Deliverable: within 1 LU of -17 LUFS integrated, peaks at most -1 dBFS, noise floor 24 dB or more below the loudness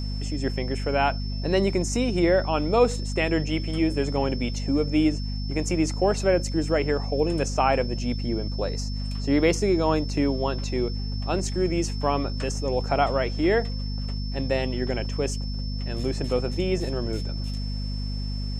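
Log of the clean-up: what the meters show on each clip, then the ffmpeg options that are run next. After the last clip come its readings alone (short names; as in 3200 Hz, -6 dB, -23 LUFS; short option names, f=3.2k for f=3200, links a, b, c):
hum 50 Hz; harmonics up to 250 Hz; hum level -27 dBFS; steady tone 5300 Hz; tone level -39 dBFS; loudness -25.5 LUFS; peak -7.5 dBFS; loudness target -17.0 LUFS
-> -af "bandreject=f=50:t=h:w=6,bandreject=f=100:t=h:w=6,bandreject=f=150:t=h:w=6,bandreject=f=200:t=h:w=6,bandreject=f=250:t=h:w=6"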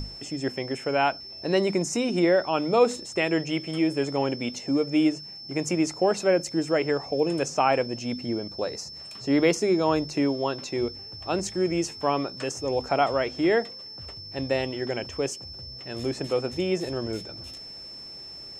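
hum none; steady tone 5300 Hz; tone level -39 dBFS
-> -af "bandreject=f=5.3k:w=30"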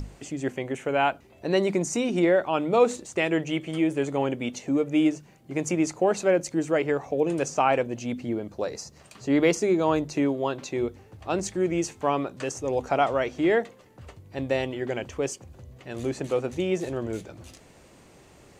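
steady tone none; loudness -26.5 LUFS; peak -8.5 dBFS; loudness target -17.0 LUFS
-> -af "volume=9.5dB,alimiter=limit=-1dB:level=0:latency=1"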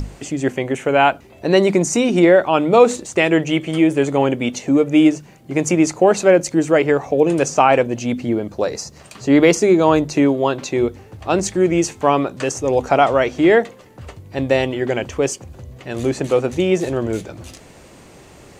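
loudness -17.0 LUFS; peak -1.0 dBFS; noise floor -44 dBFS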